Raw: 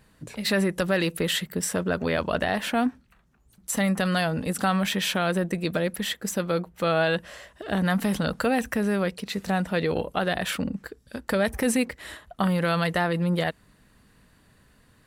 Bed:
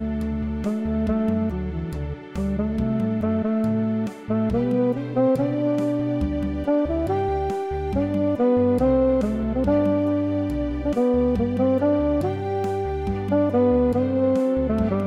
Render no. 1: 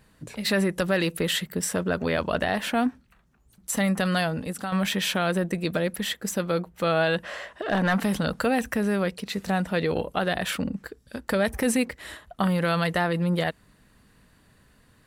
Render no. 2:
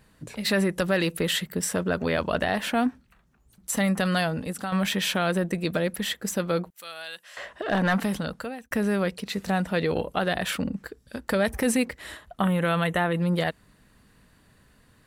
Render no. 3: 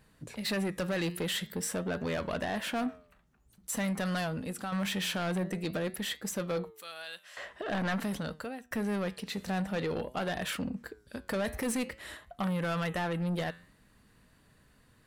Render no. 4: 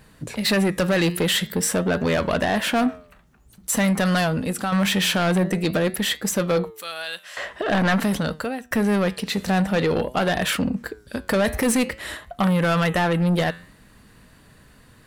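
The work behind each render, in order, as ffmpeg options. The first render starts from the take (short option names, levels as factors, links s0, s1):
-filter_complex "[0:a]asettb=1/sr,asplit=3[s0][s1][s2];[s0]atrim=end=7.234[s3];[s1]atrim=start=7.23:end=8.03,asetpts=PTS-STARTPTS,afade=t=in:d=0.004:c=qsin,afade=t=out:st=0.796:d=0.004:c=qsin,asplit=2[s4][s5];[s5]highpass=f=720:p=1,volume=7.08,asoftclip=type=tanh:threshold=0.251[s6];[s4][s6]amix=inputs=2:normalize=0,lowpass=f=1700:p=1,volume=0.501[s7];[s2]atrim=start=8.026[s8];[s3][s7]acrossfade=d=0.004:c1=hsin:c2=qsin[s9];[s9][s8]acrossfade=d=0.004:c1=qsin:c2=hsin,asplit=2[s10][s11];[s10]atrim=end=4.72,asetpts=PTS-STARTPTS,afade=t=out:st=4.21:d=0.51:silence=0.316228[s12];[s11]atrim=start=4.72,asetpts=PTS-STARTPTS,afade=t=in:d=0.004:c=hsin:silence=0.316228[s13];[s12][s13]concat=n=2:v=0:a=1"
-filter_complex "[0:a]asettb=1/sr,asplit=3[s0][s1][s2];[s0]atrim=end=6.704[s3];[s1]atrim=start=6.7:end=7.37,asetpts=PTS-STARTPTS,afade=t=in:d=0.004:c=qsin,afade=t=out:st=0.666:d=0.004:c=qsin,aderivative[s4];[s2]atrim=start=7.366[s5];[s3][s4]acrossfade=d=0.004:c1=hsin:c2=qsin[s6];[s6][s5]acrossfade=d=0.004:c1=qsin:c2=hsin,asettb=1/sr,asplit=3[s7][s8][s9];[s7]atrim=end=12.404[s10];[s8]atrim=start=12.4:end=13.17,asetpts=PTS-STARTPTS,afade=t=in:d=0.004:c=qsin,afade=t=out:st=0.766:d=0.004:c=qsin,asuperstop=centerf=4800:order=4:qfactor=2.2[s11];[s9]atrim=start=13.166[s12];[s10][s11]acrossfade=d=0.004:c1=hsin:c2=qsin[s13];[s13][s12]acrossfade=d=0.004:c1=qsin:c2=hsin,asplit=2[s14][s15];[s14]atrim=end=8.71,asetpts=PTS-STARTPTS,afade=t=out:st=7.93:d=0.78[s16];[s15]atrim=start=8.71,asetpts=PTS-STARTPTS,afade=t=in:d=0.004:c=hsin[s17];[s16][s17]concat=n=2:v=0:a=1"
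-af "flanger=delay=6.3:depth=5.6:regen=87:speed=0.48:shape=triangular,asoftclip=type=tanh:threshold=0.0447"
-af "volume=3.98"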